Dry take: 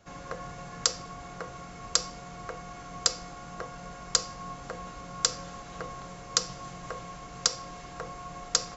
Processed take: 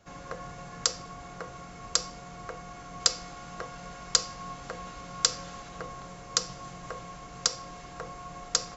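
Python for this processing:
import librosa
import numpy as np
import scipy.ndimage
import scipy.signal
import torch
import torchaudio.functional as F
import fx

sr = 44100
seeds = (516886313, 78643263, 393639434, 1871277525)

y = fx.peak_eq(x, sr, hz=3500.0, db=3.5, octaves=2.4, at=(3.0, 5.69))
y = y * 10.0 ** (-1.0 / 20.0)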